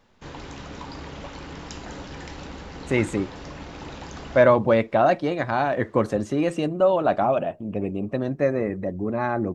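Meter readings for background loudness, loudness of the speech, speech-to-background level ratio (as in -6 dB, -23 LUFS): -38.5 LUFS, -23.0 LUFS, 15.5 dB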